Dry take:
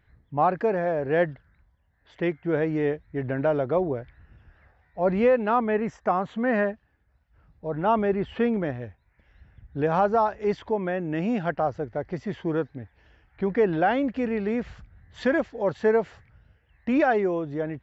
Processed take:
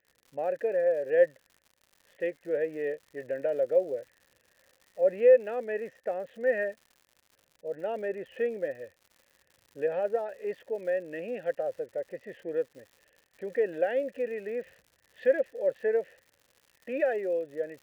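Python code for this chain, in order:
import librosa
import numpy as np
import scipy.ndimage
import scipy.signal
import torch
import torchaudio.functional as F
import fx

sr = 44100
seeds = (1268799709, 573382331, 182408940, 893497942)

y = fx.vowel_filter(x, sr, vowel='e')
y = fx.dmg_crackle(y, sr, seeds[0], per_s=160.0, level_db=-50.0)
y = y * librosa.db_to_amplitude(3.5)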